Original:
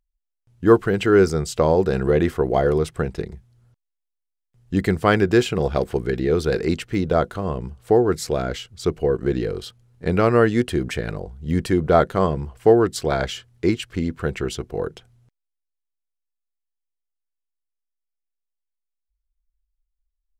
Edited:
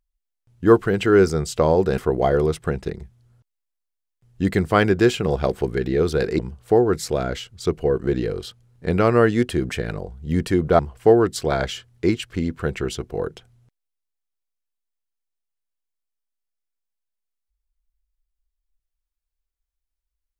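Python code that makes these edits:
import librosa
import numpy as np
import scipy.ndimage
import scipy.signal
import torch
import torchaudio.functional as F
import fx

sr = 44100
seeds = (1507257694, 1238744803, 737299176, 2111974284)

y = fx.edit(x, sr, fx.cut(start_s=1.98, length_s=0.32),
    fx.cut(start_s=6.71, length_s=0.87),
    fx.cut(start_s=11.98, length_s=0.41), tone=tone)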